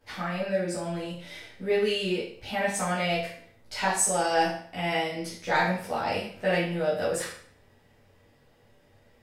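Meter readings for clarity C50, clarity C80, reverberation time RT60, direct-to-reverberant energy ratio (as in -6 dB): 3.5 dB, 8.0 dB, 0.55 s, -10.0 dB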